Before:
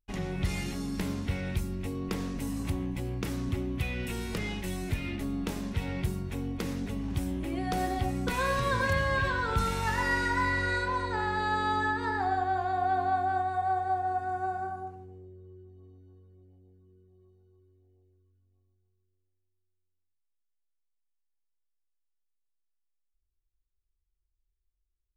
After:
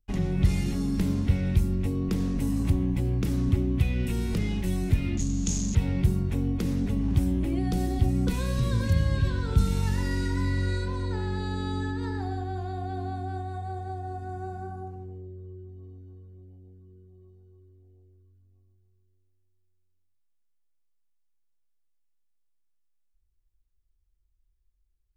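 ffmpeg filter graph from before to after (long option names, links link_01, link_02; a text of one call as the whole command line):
ffmpeg -i in.wav -filter_complex "[0:a]asettb=1/sr,asplit=3[link_01][link_02][link_03];[link_01]atrim=end=5.174[link_04];[link_02]atrim=start=5.17:end=5.75,asetpts=PTS-STARTPTS,afade=type=in:duration=0.004:curve=qsin,afade=type=out:start_time=0.576:duration=0.004:curve=qsin,aeval=exprs='val(0)+0.5*0.0141*sgn(val(0))':channel_layout=same,acrossover=split=220|3000[link_05][link_06][link_07];[link_06]acompressor=threshold=-54dB:ratio=2.5:attack=3.2:release=140:knee=2.83:detection=peak[link_08];[link_05][link_08][link_07]amix=inputs=3:normalize=0,lowpass=frequency=6700:width_type=q:width=15[link_09];[link_03]atrim=start=5.746[link_10];[link_04][link_09]acrossfade=duration=0.004:curve1=hsin:curve2=qsin[link_11];[link_11][link_10]acrossfade=duration=0.004:curve1=qsin:curve2=hsin,acrossover=split=380|3000[link_12][link_13][link_14];[link_13]acompressor=threshold=-43dB:ratio=6[link_15];[link_12][link_15][link_14]amix=inputs=3:normalize=0,lowshelf=frequency=380:gain=9.5" out.wav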